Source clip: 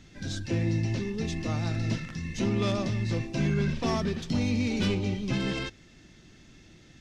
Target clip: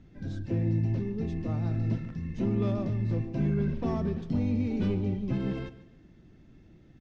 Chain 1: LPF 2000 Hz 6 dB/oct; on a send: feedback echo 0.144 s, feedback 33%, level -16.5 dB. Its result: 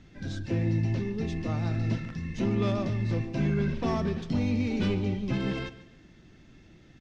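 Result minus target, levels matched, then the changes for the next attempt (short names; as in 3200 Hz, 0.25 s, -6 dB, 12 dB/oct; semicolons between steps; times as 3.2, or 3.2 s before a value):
2000 Hz band +8.0 dB
change: LPF 530 Hz 6 dB/oct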